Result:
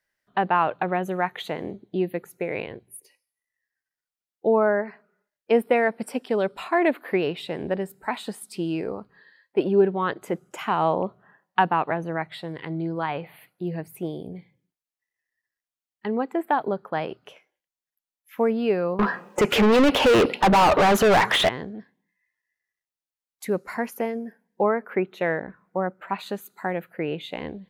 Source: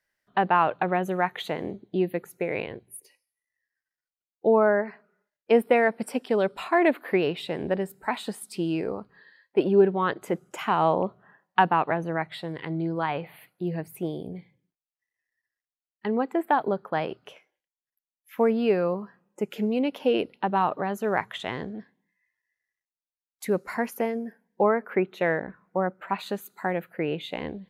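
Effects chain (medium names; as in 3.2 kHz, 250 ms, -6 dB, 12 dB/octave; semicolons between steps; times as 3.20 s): 18.99–21.49 s: overdrive pedal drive 38 dB, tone 2.6 kHz, clips at -9.5 dBFS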